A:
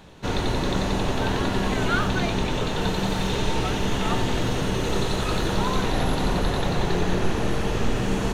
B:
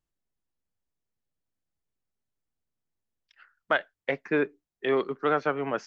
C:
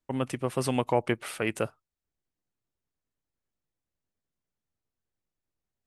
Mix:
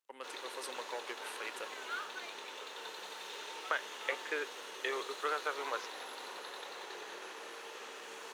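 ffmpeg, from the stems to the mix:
-filter_complex "[0:a]aeval=exprs='sgn(val(0))*max(abs(val(0))-0.01,0)':c=same,volume=-13.5dB[a];[1:a]acompressor=threshold=-26dB:ratio=6,volume=-1.5dB[b];[2:a]asoftclip=type=hard:threshold=-17.5dB,volume=-9.5dB[c];[a][b][c]amix=inputs=3:normalize=0,highpass=f=490:w=0.5412,highpass=f=490:w=1.3066,equalizer=f=670:w=2.7:g=-9.5"

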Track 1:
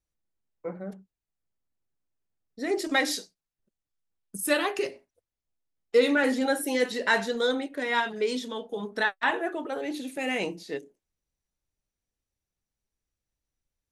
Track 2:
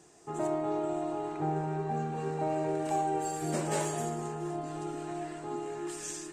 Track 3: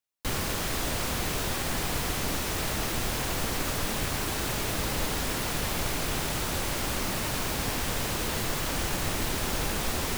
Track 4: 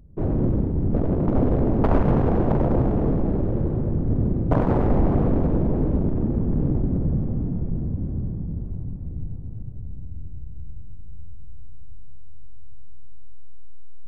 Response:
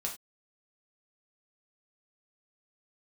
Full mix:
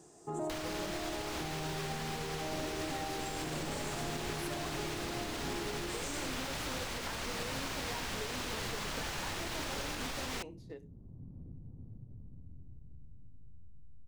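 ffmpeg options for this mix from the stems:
-filter_complex "[0:a]agate=range=-33dB:threshold=-37dB:ratio=3:detection=peak,acompressor=threshold=-29dB:ratio=6,volume=-16dB,asplit=3[a][b][c];[b]volume=-15.5dB[d];[1:a]equalizer=f=2.3k:w=0.79:g=-9,alimiter=level_in=5dB:limit=-24dB:level=0:latency=1:release=12,volume=-5dB,volume=1.5dB[e];[2:a]acrossover=split=490|1300|7400[f][g][h][i];[f]acompressor=threshold=-42dB:ratio=4[j];[g]acompressor=threshold=-45dB:ratio=4[k];[h]acompressor=threshold=-39dB:ratio=4[l];[i]acompressor=threshold=-55dB:ratio=4[m];[j][k][l][m]amix=inputs=4:normalize=0,adelay=250,volume=2.5dB[n];[3:a]acompressor=threshold=-25dB:ratio=6,adelay=2350,volume=-18.5dB,asplit=2[o][p];[p]volume=-15.5dB[q];[c]apad=whole_len=724438[r];[o][r]sidechaincompress=threshold=-60dB:ratio=5:attack=5.1:release=572[s];[e][n]amix=inputs=2:normalize=0,alimiter=level_in=5dB:limit=-24dB:level=0:latency=1:release=172,volume=-5dB,volume=0dB[t];[a][s]amix=inputs=2:normalize=0,equalizer=f=125:t=o:w=1:g=5,equalizer=f=250:t=o:w=1:g=8,equalizer=f=500:t=o:w=1:g=5,equalizer=f=1k:t=o:w=1:g=8,acompressor=threshold=-44dB:ratio=6,volume=0dB[u];[4:a]atrim=start_sample=2205[v];[d][q]amix=inputs=2:normalize=0[w];[w][v]afir=irnorm=-1:irlink=0[x];[t][u][x]amix=inputs=3:normalize=0"

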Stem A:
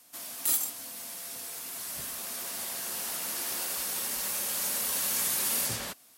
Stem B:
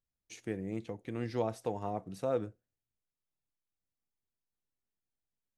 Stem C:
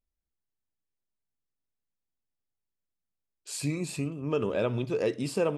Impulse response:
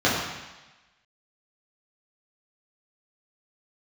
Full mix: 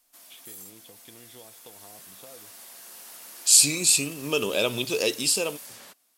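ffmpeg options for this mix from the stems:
-filter_complex "[0:a]highpass=120,alimiter=limit=-23.5dB:level=0:latency=1:release=20,volume=-10dB[a];[1:a]acompressor=threshold=-38dB:ratio=6,lowpass=f=3.4k:t=q:w=16,volume=-8dB[b];[2:a]equalizer=f=84:w=1:g=-6.5,dynaudnorm=f=120:g=9:m=5dB,aexciter=amount=8.1:drive=3.1:freq=2.6k,volume=-2dB[c];[a][b][c]amix=inputs=3:normalize=0,equalizer=f=130:t=o:w=2:g=-5"

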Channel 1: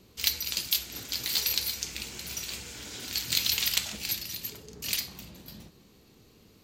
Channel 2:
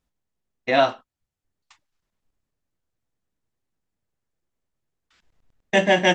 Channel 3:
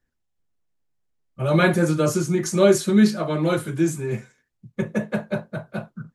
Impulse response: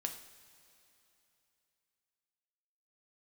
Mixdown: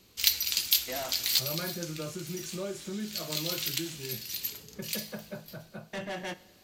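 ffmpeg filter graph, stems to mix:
-filter_complex "[0:a]tiltshelf=f=1.2k:g=-4.5,volume=-4dB,asplit=2[a][b];[b]volume=-8.5dB[c];[1:a]asoftclip=type=tanh:threshold=-20dB,adelay=200,volume=-16dB,asplit=2[d][e];[e]volume=-6.5dB[f];[2:a]acompressor=threshold=-22dB:ratio=3,volume=-16dB,asplit=3[g][h][i];[h]volume=-7dB[j];[i]apad=whole_len=292721[k];[a][k]sidechaincompress=threshold=-59dB:ratio=8:attack=16:release=150[l];[3:a]atrim=start_sample=2205[m];[c][f][j]amix=inputs=3:normalize=0[n];[n][m]afir=irnorm=-1:irlink=0[o];[l][d][g][o]amix=inputs=4:normalize=0"

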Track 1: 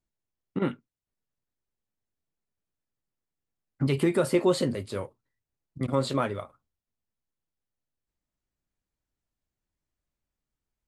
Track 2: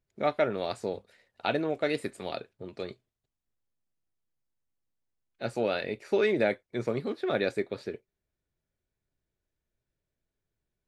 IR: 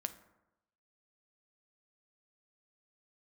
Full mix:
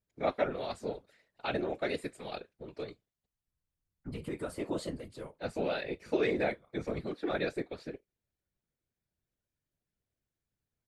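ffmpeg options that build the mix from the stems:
-filter_complex "[0:a]adelay=250,volume=-6dB,asplit=2[a][b];[b]volume=-23.5dB[c];[1:a]volume=1.5dB,asplit=2[d][e];[e]apad=whole_len=490771[f];[a][f]sidechaincompress=threshold=-51dB:ratio=3:attack=28:release=1280[g];[2:a]atrim=start_sample=2205[h];[c][h]afir=irnorm=-1:irlink=0[i];[g][d][i]amix=inputs=3:normalize=0,afftfilt=real='hypot(re,im)*cos(2*PI*random(0))':imag='hypot(re,im)*sin(2*PI*random(1))':win_size=512:overlap=0.75"

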